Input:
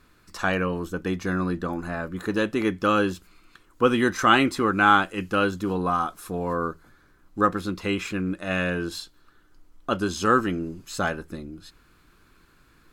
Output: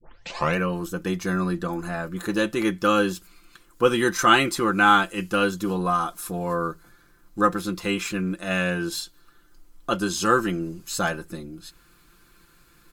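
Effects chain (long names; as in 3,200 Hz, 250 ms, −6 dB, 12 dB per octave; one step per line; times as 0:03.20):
turntable start at the beginning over 0.57 s
high-shelf EQ 5,300 Hz +10.5 dB
comb filter 5.8 ms, depth 52%
level −1 dB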